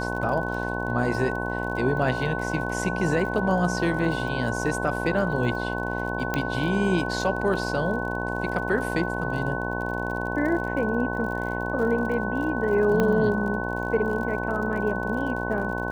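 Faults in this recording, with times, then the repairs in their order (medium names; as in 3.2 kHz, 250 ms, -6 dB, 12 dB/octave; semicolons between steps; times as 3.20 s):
buzz 60 Hz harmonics 18 -30 dBFS
crackle 46 per s -34 dBFS
whine 1.5 kHz -31 dBFS
6.34 s: pop -11 dBFS
13.00 s: pop -11 dBFS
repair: de-click; band-stop 1.5 kHz, Q 30; de-hum 60 Hz, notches 18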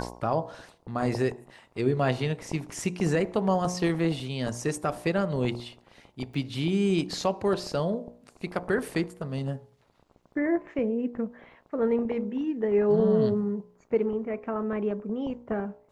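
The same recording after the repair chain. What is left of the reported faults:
6.34 s: pop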